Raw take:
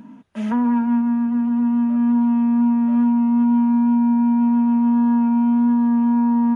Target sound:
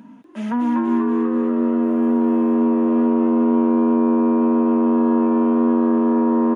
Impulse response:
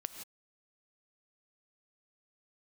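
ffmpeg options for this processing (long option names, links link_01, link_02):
-filter_complex "[0:a]highpass=frequency=170:poles=1,asettb=1/sr,asplit=3[link_01][link_02][link_03];[link_01]atrim=end=1.834[link_04];[link_02]atrim=start=1.83:end=2.55,asetpts=PTS-STARTPTS,afade=type=in:duration=0.004:curve=qsin,afade=type=out:start_time=0.716:duration=0.004:curve=qsin,aeval=exprs='val(0)*gte(abs(val(0)),0.00422)':channel_layout=same[link_05];[link_03]atrim=start=2.546[link_06];[link_04][link_05]acrossfade=duration=0.004:curve1=hsin:curve2=qsin[link_07];[link_07][link_06]acrossfade=duration=0.004:curve1=qsin:curve2=hsin,asplit=2[link_08][link_09];[link_09]asplit=8[link_10][link_11][link_12][link_13][link_14][link_15][link_16][link_17];[link_10]adelay=242,afreqshift=91,volume=-5dB[link_18];[link_11]adelay=484,afreqshift=182,volume=-9.7dB[link_19];[link_12]adelay=726,afreqshift=273,volume=-14.5dB[link_20];[link_13]adelay=968,afreqshift=364,volume=-19.2dB[link_21];[link_14]adelay=1210,afreqshift=455,volume=-23.9dB[link_22];[link_15]adelay=1452,afreqshift=546,volume=-28.7dB[link_23];[link_16]adelay=1694,afreqshift=637,volume=-33.4dB[link_24];[link_17]adelay=1936,afreqshift=728,volume=-38.1dB[link_25];[link_18][link_19][link_20][link_21][link_22][link_23][link_24][link_25]amix=inputs=8:normalize=0[link_26];[link_08][link_26]amix=inputs=2:normalize=0"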